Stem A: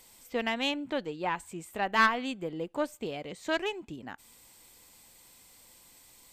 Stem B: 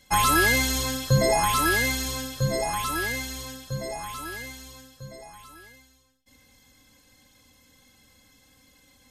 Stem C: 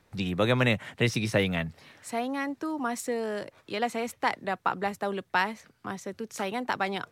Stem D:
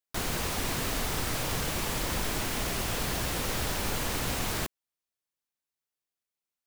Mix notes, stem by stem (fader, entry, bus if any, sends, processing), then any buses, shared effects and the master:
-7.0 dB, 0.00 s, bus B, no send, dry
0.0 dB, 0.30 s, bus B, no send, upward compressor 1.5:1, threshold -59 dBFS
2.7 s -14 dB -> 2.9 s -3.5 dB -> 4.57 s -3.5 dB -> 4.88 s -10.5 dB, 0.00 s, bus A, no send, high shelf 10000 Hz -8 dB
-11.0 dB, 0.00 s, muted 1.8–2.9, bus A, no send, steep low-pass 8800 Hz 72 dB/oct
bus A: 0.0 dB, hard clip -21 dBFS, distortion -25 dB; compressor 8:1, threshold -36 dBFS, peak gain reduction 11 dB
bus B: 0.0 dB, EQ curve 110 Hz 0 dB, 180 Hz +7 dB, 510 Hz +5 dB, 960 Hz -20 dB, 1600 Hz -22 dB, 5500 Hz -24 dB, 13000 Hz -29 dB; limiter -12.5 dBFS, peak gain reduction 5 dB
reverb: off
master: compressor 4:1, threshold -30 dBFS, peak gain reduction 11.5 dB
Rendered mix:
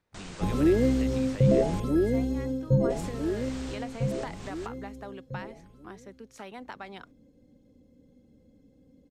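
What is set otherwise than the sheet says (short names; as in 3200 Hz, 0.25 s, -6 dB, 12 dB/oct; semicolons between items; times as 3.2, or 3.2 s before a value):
stem A: muted; master: missing compressor 4:1, threshold -30 dBFS, peak gain reduction 11.5 dB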